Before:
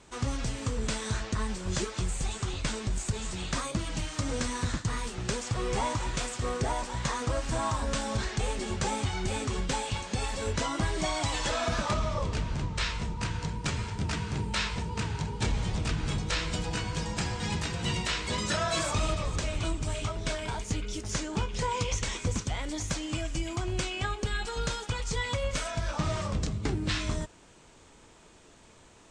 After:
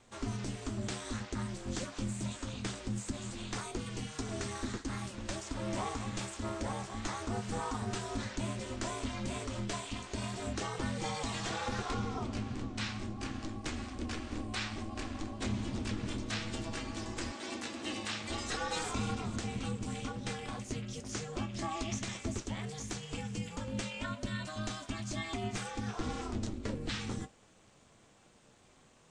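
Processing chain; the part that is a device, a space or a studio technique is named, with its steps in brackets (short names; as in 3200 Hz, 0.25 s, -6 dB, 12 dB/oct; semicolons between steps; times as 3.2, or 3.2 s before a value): alien voice (ring modulator 160 Hz; flange 0.24 Hz, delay 7.8 ms, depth 1.9 ms, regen -62%); 17.31–18.29 HPF 320 Hz -> 84 Hz 12 dB/oct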